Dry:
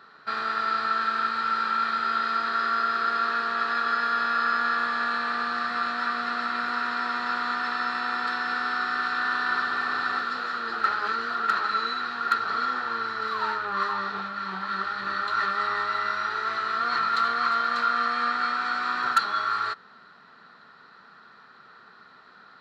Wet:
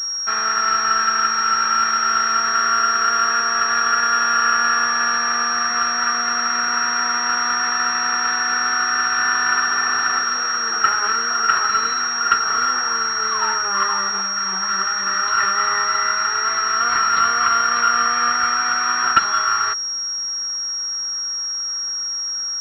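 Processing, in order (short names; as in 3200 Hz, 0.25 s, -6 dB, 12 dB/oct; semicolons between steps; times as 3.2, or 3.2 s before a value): tilt shelf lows -4.5 dB, about 1100 Hz; pulse-width modulation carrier 5600 Hz; gain +6.5 dB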